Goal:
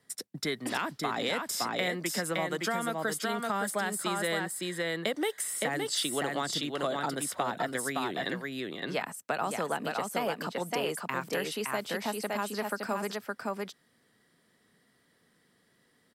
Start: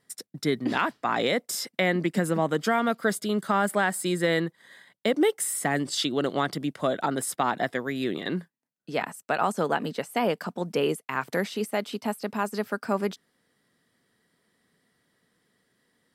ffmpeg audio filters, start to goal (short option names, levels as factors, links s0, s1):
-filter_complex "[0:a]aecho=1:1:565:0.596,acrossover=split=100|550|4700[s0][s1][s2][s3];[s0]acompressor=threshold=0.00112:ratio=4[s4];[s1]acompressor=threshold=0.0112:ratio=4[s5];[s2]acompressor=threshold=0.0251:ratio=4[s6];[s3]acompressor=threshold=0.0178:ratio=4[s7];[s4][s5][s6][s7]amix=inputs=4:normalize=0,volume=1.12"